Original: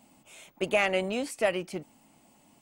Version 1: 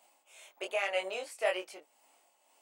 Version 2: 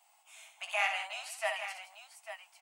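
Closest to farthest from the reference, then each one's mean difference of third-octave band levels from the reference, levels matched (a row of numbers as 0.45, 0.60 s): 1, 2; 5.5, 12.0 dB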